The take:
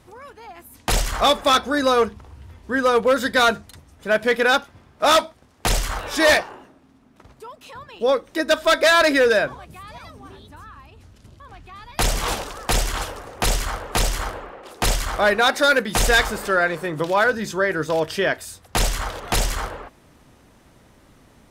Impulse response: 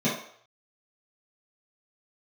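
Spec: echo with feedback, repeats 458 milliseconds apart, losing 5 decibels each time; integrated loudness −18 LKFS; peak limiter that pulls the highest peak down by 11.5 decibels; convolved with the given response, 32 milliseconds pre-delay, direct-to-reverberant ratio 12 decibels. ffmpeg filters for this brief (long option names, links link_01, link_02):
-filter_complex "[0:a]alimiter=limit=-17.5dB:level=0:latency=1,aecho=1:1:458|916|1374|1832|2290|2748|3206:0.562|0.315|0.176|0.0988|0.0553|0.031|0.0173,asplit=2[link_01][link_02];[1:a]atrim=start_sample=2205,adelay=32[link_03];[link_02][link_03]afir=irnorm=-1:irlink=0,volume=-24.5dB[link_04];[link_01][link_04]amix=inputs=2:normalize=0,volume=7.5dB"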